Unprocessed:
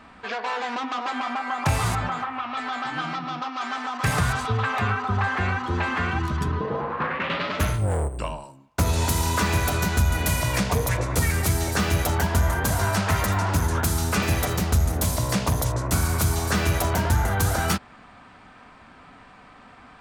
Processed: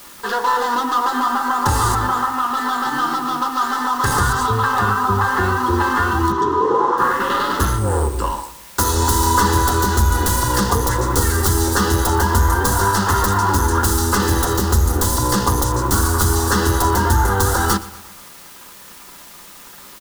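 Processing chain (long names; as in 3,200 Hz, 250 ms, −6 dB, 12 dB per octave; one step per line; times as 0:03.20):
stylus tracing distortion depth 0.071 ms
0:08.32–0:08.93: spectral tilt +1.5 dB per octave
in parallel at +2 dB: brickwall limiter −23 dBFS, peak gain reduction 11 dB
on the sum: dead-zone distortion −39.5 dBFS
phaser with its sweep stopped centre 630 Hz, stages 6
bit-depth reduction 8 bits, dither triangular
0:06.32–0:06.98: loudspeaker in its box 180–6,100 Hz, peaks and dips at 210 Hz −9 dB, 400 Hz +7 dB, 970 Hz +3 dB, 1,600 Hz −3 dB, 2,400 Hz −6 dB, 4,700 Hz −7 dB
repeating echo 120 ms, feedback 50%, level −18.5 dB
on a send at −6 dB: convolution reverb, pre-delay 3 ms
on the sum: level +7 dB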